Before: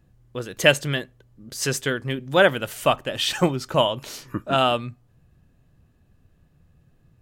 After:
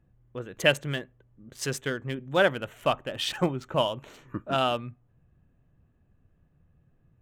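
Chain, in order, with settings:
adaptive Wiener filter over 9 samples
level −5.5 dB

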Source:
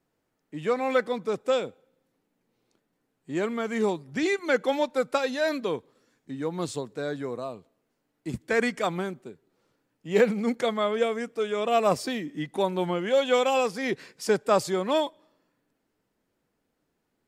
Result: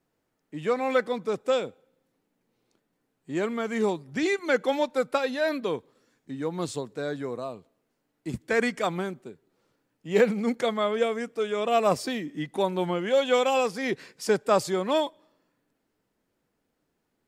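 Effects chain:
0:05.06–0:05.63: parametric band 6,500 Hz −4 dB → −10 dB 0.73 octaves

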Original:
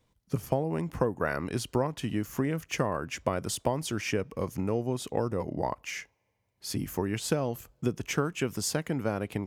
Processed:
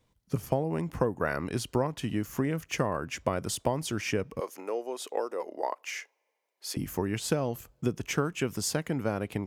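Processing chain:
0:04.40–0:06.77: high-pass filter 390 Hz 24 dB per octave

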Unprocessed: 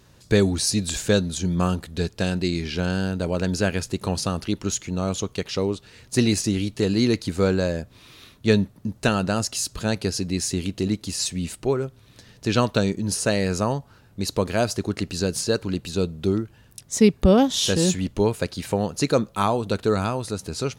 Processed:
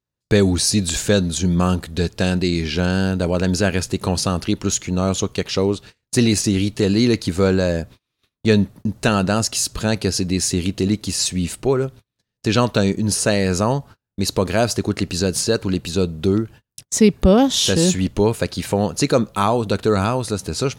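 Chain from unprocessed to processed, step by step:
noise gate −42 dBFS, range −38 dB
in parallel at 0 dB: brickwall limiter −15.5 dBFS, peak gain reduction 10 dB

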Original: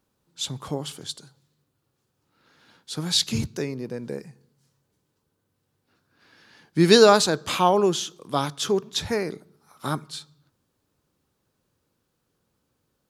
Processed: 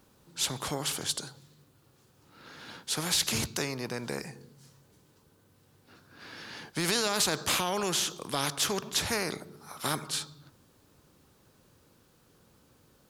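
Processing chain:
brickwall limiter −13.5 dBFS, peak gain reduction 11.5 dB
every bin compressed towards the loudest bin 2 to 1

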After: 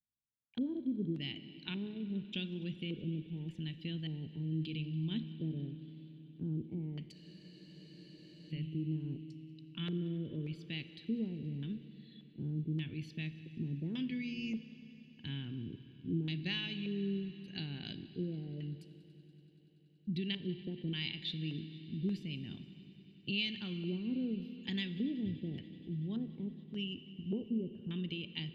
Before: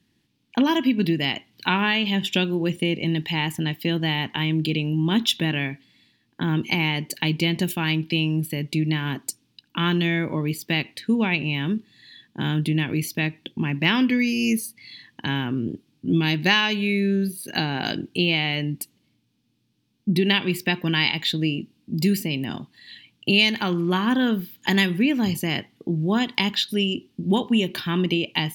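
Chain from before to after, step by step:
noise gate with hold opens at −51 dBFS
guitar amp tone stack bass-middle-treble 10-0-1
auto-filter low-pass square 0.86 Hz 460–3,500 Hz
echo machine with several playback heads 95 ms, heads second and third, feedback 74%, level −22 dB
four-comb reverb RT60 3.1 s, combs from 28 ms, DRR 13.5 dB
frozen spectrum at 0:07.16, 1.34 s

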